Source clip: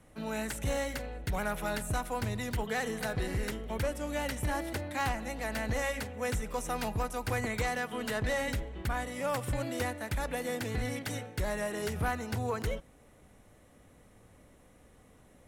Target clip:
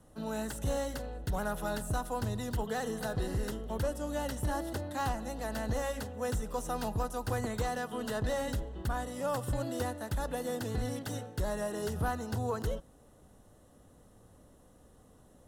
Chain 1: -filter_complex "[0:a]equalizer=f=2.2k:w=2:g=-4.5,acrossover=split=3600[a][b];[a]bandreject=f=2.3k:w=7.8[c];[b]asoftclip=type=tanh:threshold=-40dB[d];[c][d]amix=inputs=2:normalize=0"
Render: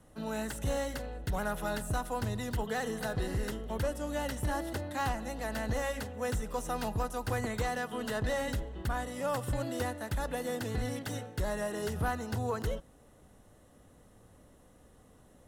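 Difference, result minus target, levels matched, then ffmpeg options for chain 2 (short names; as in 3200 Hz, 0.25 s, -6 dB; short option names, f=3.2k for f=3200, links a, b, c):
2000 Hz band +3.0 dB
-filter_complex "[0:a]equalizer=f=2.2k:w=2:g=-11,acrossover=split=3600[a][b];[a]bandreject=f=2.3k:w=7.8[c];[b]asoftclip=type=tanh:threshold=-40dB[d];[c][d]amix=inputs=2:normalize=0"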